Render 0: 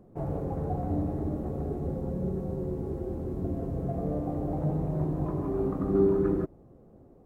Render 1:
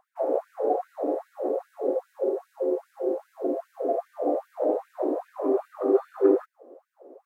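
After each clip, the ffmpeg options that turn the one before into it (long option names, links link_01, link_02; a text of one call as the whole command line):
ffmpeg -i in.wav -af "equalizer=frequency=530:width_type=o:width=1.2:gain=14,afftfilt=real='re*gte(b*sr/1024,230*pow(1500/230,0.5+0.5*sin(2*PI*2.5*pts/sr)))':imag='im*gte(b*sr/1024,230*pow(1500/230,0.5+0.5*sin(2*PI*2.5*pts/sr)))':win_size=1024:overlap=0.75,volume=1.5dB" out.wav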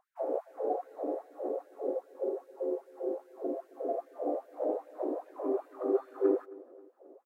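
ffmpeg -i in.wav -af "aecho=1:1:267|534|801:0.0841|0.0362|0.0156,volume=-7.5dB" out.wav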